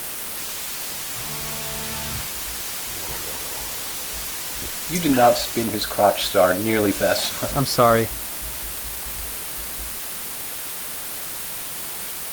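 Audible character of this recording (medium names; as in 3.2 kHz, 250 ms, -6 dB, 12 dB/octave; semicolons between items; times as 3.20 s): a quantiser's noise floor 6-bit, dither triangular; Opus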